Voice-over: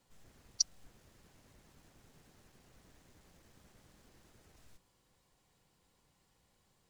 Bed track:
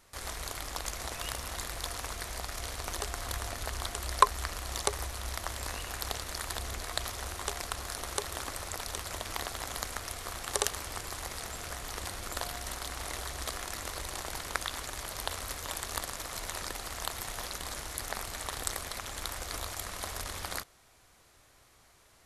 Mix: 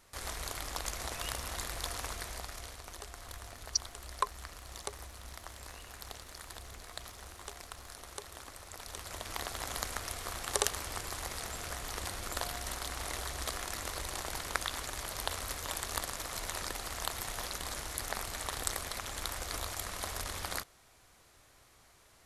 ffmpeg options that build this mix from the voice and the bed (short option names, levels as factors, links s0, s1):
-filter_complex "[0:a]adelay=3150,volume=0.944[s0];[1:a]volume=2.82,afade=t=out:st=2.05:d=0.78:silence=0.334965,afade=t=in:st=8.66:d=1.06:silence=0.316228[s1];[s0][s1]amix=inputs=2:normalize=0"